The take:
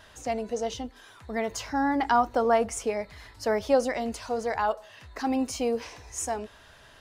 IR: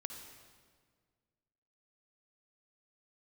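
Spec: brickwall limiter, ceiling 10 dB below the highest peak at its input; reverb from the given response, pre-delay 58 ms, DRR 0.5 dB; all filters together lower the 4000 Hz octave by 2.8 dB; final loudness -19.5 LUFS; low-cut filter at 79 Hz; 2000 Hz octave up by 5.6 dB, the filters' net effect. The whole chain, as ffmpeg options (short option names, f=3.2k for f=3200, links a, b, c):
-filter_complex "[0:a]highpass=79,equalizer=f=2k:t=o:g=8.5,equalizer=f=4k:t=o:g=-7.5,alimiter=limit=-20dB:level=0:latency=1,asplit=2[a][b];[1:a]atrim=start_sample=2205,adelay=58[c];[b][c]afir=irnorm=-1:irlink=0,volume=1.5dB[d];[a][d]amix=inputs=2:normalize=0,volume=9dB"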